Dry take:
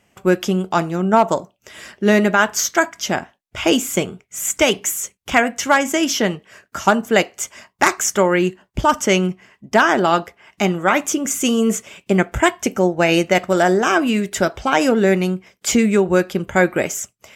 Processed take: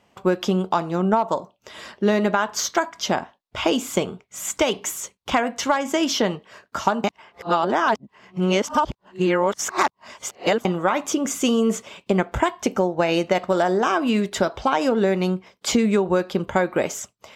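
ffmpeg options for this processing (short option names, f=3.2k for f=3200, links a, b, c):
-filter_complex "[0:a]asplit=3[a][b][c];[a]atrim=end=7.042[d];[b]atrim=start=7.038:end=10.652,asetpts=PTS-STARTPTS,areverse[e];[c]atrim=start=10.648[f];[d][e]acrossfade=d=0.004:c1=hsin:c2=hsin[g];[g][f]acrossfade=d=0.004:c1=hsin:c2=hsin,equalizer=f=250:t=o:w=1:g=4,equalizer=f=500:t=o:w=1:g=7,equalizer=f=1k:t=o:w=1:g=12,equalizer=f=4k:t=o:w=1:g=11,acompressor=threshold=-8dB:ratio=6,bass=f=250:g=5,treble=f=4k:g=-1,volume=-8.5dB"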